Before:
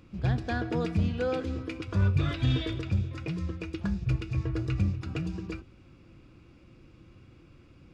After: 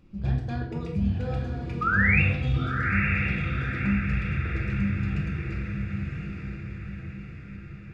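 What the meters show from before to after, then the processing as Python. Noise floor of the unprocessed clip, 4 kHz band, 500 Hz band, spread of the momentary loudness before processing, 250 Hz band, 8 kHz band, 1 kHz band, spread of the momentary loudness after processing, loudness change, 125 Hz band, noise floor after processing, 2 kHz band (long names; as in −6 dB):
−56 dBFS, −3.0 dB, −4.0 dB, 8 LU, +3.5 dB, can't be measured, +7.5 dB, 16 LU, +3.5 dB, +2.5 dB, −41 dBFS, +14.5 dB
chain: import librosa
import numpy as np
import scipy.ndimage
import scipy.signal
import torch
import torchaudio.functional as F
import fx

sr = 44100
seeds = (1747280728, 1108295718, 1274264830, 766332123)

y = fx.dereverb_blind(x, sr, rt60_s=1.8)
y = fx.low_shelf(y, sr, hz=220.0, db=9.0)
y = fx.spec_paint(y, sr, seeds[0], shape='rise', start_s=1.81, length_s=0.41, low_hz=1200.0, high_hz=2800.0, level_db=-18.0)
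y = fx.echo_diffused(y, sr, ms=986, feedback_pct=52, wet_db=-3.5)
y = fx.room_shoebox(y, sr, seeds[1], volume_m3=330.0, walls='mixed', distance_m=1.2)
y = y * 10.0 ** (-8.0 / 20.0)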